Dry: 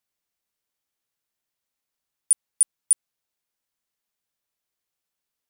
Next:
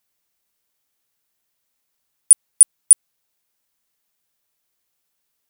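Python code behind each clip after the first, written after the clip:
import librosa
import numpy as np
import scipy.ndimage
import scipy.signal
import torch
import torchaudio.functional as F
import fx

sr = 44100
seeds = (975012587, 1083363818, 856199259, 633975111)

y = fx.high_shelf(x, sr, hz=10000.0, db=5.5)
y = F.gain(torch.from_numpy(y), 7.0).numpy()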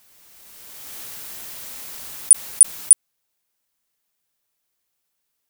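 y = fx.pre_swell(x, sr, db_per_s=21.0)
y = F.gain(torch.from_numpy(y), -1.5).numpy()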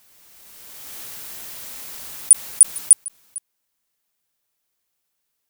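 y = x + 10.0 ** (-21.0 / 20.0) * np.pad(x, (int(452 * sr / 1000.0), 0))[:len(x)]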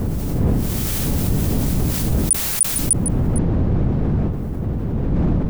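y = fx.dmg_wind(x, sr, seeds[0], corner_hz=170.0, level_db=-22.0)
y = fx.env_flatten(y, sr, amount_pct=70)
y = F.gain(torch.from_numpy(y), -6.5).numpy()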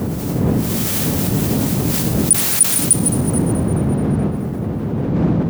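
y = fx.reverse_delay_fb(x, sr, ms=107, feedback_pct=74, wet_db=-13)
y = scipy.signal.sosfilt(scipy.signal.butter(2, 130.0, 'highpass', fs=sr, output='sos'), y)
y = F.gain(torch.from_numpy(y), 4.5).numpy()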